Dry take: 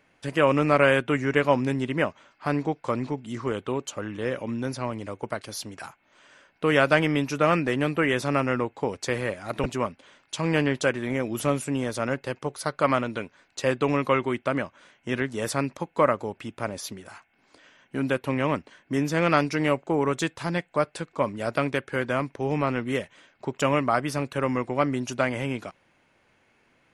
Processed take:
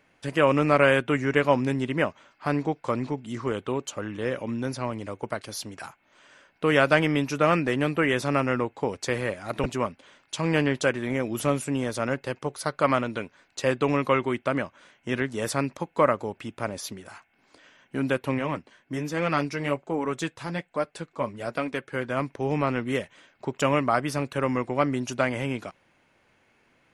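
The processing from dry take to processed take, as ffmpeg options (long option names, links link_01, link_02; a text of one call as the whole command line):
ffmpeg -i in.wav -filter_complex "[0:a]asplit=3[link_01][link_02][link_03];[link_01]afade=type=out:start_time=18.38:duration=0.02[link_04];[link_02]flanger=delay=3.7:depth=4.7:regen=-40:speed=1.2:shape=sinusoidal,afade=type=in:start_time=18.38:duration=0.02,afade=type=out:start_time=22.16:duration=0.02[link_05];[link_03]afade=type=in:start_time=22.16:duration=0.02[link_06];[link_04][link_05][link_06]amix=inputs=3:normalize=0" out.wav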